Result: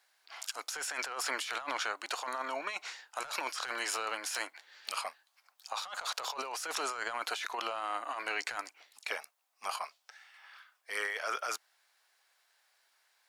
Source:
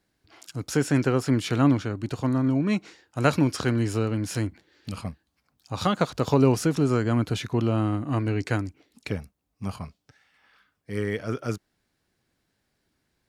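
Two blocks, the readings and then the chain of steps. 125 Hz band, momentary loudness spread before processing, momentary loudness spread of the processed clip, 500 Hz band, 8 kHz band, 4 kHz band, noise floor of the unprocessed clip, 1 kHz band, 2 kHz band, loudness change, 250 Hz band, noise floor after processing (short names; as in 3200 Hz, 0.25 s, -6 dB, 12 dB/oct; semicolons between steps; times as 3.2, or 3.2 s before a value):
under -40 dB, 15 LU, 11 LU, -15.5 dB, -0.5 dB, -0.5 dB, -76 dBFS, -3.5 dB, -0.5 dB, -11.0 dB, -30.5 dB, -75 dBFS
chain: HPF 740 Hz 24 dB/oct; soft clip -21 dBFS, distortion -13 dB; negative-ratio compressor -40 dBFS, ratio -1; gain +3 dB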